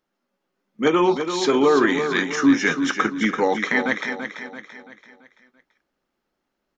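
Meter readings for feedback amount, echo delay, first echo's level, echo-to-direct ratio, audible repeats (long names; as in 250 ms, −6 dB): 44%, 336 ms, −8.0 dB, −7.0 dB, 4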